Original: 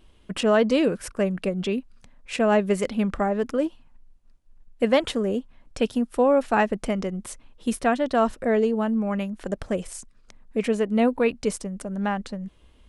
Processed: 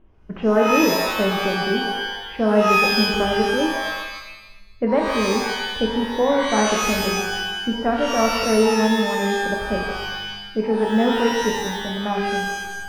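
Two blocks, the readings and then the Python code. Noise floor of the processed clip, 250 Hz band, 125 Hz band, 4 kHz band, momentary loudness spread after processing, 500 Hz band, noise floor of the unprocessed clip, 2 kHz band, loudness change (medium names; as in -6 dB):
-41 dBFS, +3.0 dB, +2.5 dB, +13.0 dB, 10 LU, +3.0 dB, -56 dBFS, +10.0 dB, +4.0 dB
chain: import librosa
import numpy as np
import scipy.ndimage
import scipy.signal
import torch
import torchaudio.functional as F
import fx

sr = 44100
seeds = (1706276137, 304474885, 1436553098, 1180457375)

y = scipy.signal.sosfilt(scipy.signal.bessel(4, 1400.0, 'lowpass', norm='mag', fs=sr, output='sos'), x)
y = fx.rev_shimmer(y, sr, seeds[0], rt60_s=1.0, semitones=12, shimmer_db=-2, drr_db=1.0)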